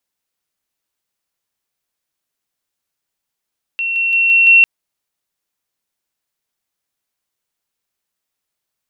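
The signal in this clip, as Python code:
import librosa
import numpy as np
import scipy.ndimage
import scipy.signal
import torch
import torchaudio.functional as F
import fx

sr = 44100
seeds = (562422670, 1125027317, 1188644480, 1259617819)

y = fx.level_ladder(sr, hz=2720.0, from_db=-16.5, step_db=3.0, steps=5, dwell_s=0.17, gap_s=0.0)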